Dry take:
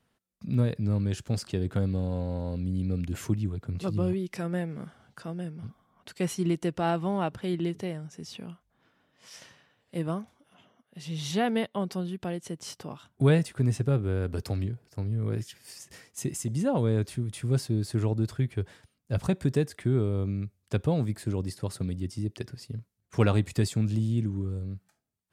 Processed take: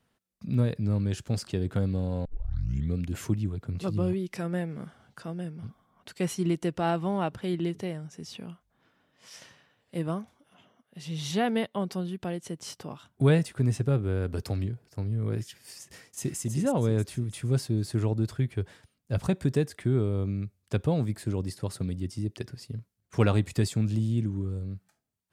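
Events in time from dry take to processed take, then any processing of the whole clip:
0:02.25: tape start 0.71 s
0:15.81–0:16.39: delay throw 320 ms, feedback 45%, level −6 dB

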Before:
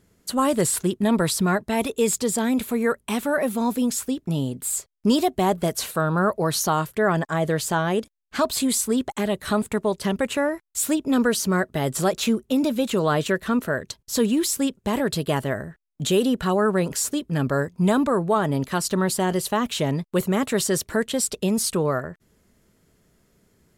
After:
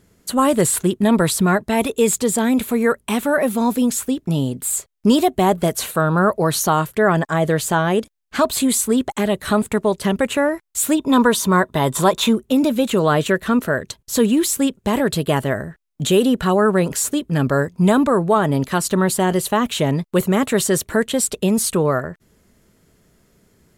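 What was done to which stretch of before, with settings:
0:10.98–0:12.33: hollow resonant body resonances 1,000/3,600 Hz, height 14 dB, ringing for 25 ms
whole clip: dynamic equaliser 5,100 Hz, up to −6 dB, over −47 dBFS, Q 2.7; level +5 dB

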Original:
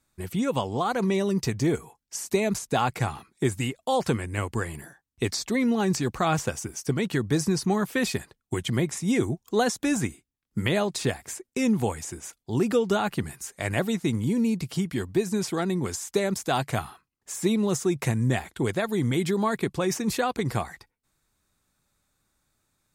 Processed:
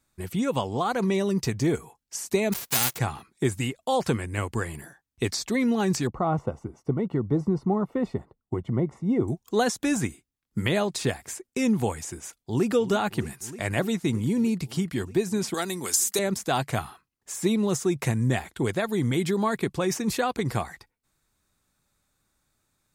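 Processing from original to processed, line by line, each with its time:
0:02.52–0:02.97: spectral envelope flattened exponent 0.1
0:06.07–0:09.28: Savitzky-Golay smoothing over 65 samples
0:12.27–0:12.71: delay throw 310 ms, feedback 85%, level −14 dB
0:15.54–0:16.19: RIAA equalisation recording

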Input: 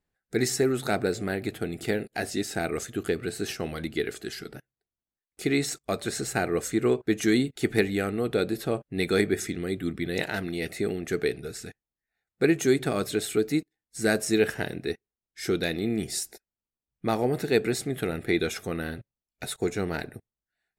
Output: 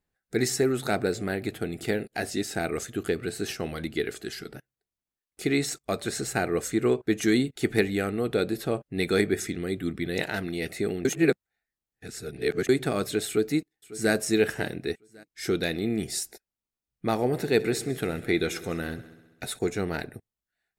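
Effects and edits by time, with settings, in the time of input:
0:11.05–0:12.69: reverse
0:13.27–0:14.13: delay throw 550 ms, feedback 35%, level −17.5 dB
0:17.13–0:19.59: echo machine with several playback heads 66 ms, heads all three, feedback 44%, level −22 dB

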